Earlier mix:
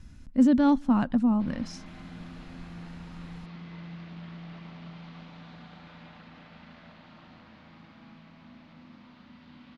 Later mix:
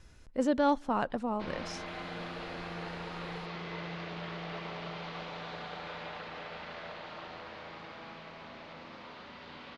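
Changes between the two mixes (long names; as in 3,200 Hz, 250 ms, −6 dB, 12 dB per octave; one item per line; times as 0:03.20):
background +9.0 dB
master: add low shelf with overshoot 320 Hz −8 dB, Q 3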